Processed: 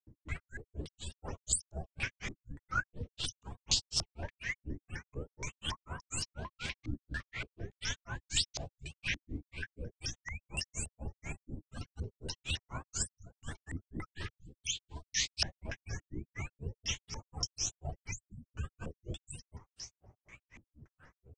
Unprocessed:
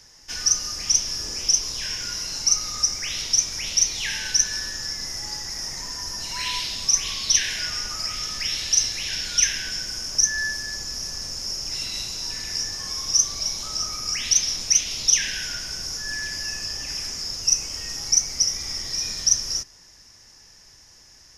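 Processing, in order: repeated pitch sweeps +9 st, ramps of 0.223 s; bell 94 Hz +9.5 dB 1.2 oct; spectral gate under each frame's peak -25 dB strong; compressor 6:1, threshold -24 dBFS, peak gain reduction 11 dB; grains 0.159 s, grains 4.1/s, pitch spread up and down by 0 st; stepped low-pass 3.5 Hz 300–5100 Hz; gain +1.5 dB

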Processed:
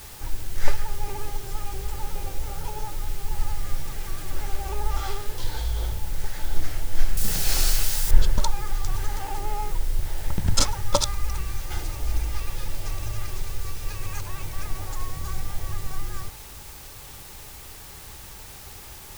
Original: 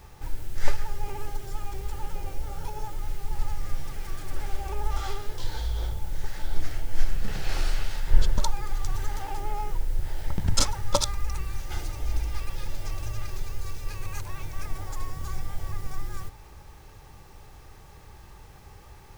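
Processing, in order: in parallel at -7 dB: requantised 6-bit, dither triangular; 7.17–8.11 on the sum: tone controls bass +1 dB, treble +15 dB; gain -1 dB

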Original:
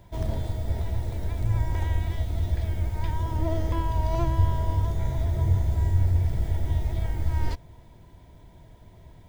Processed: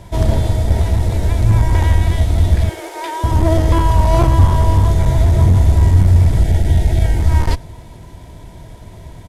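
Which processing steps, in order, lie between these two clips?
CVSD 64 kbps; 2.69–3.24 elliptic high-pass 330 Hz, stop band 40 dB; outdoor echo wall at 18 m, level -28 dB; one-sided clip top -21.5 dBFS, bottom -13.5 dBFS; 6.44–7.19 Butterworth band-stop 1100 Hz, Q 2.4; maximiser +15.5 dB; gain -1 dB

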